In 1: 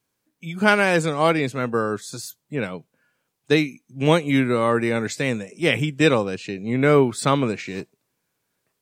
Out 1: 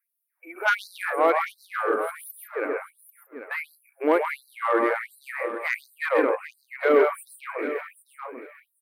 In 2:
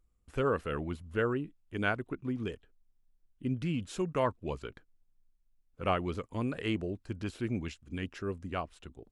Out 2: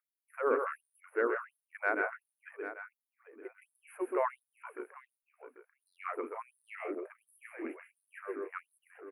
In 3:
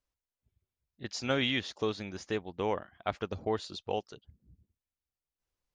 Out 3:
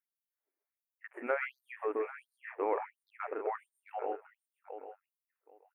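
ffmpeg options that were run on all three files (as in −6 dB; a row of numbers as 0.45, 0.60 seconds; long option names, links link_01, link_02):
-filter_complex "[0:a]asuperstop=centerf=5000:order=12:qfactor=0.64,asplit=2[link_01][link_02];[link_02]aecho=0:1:131.2|163.3:0.631|0.355[link_03];[link_01][link_03]amix=inputs=2:normalize=0,asoftclip=type=tanh:threshold=-9dB,equalizer=frequency=6100:width=2.7:gain=6,asplit=2[link_04][link_05];[link_05]aecho=0:1:792|1584:0.251|0.0402[link_06];[link_04][link_06]amix=inputs=2:normalize=0,afftfilt=real='re*gte(b*sr/1024,250*pow(4000/250,0.5+0.5*sin(2*PI*1.4*pts/sr)))':imag='im*gte(b*sr/1024,250*pow(4000/250,0.5+0.5*sin(2*PI*1.4*pts/sr)))':win_size=1024:overlap=0.75"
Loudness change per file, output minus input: −4.5, −2.0, −4.5 LU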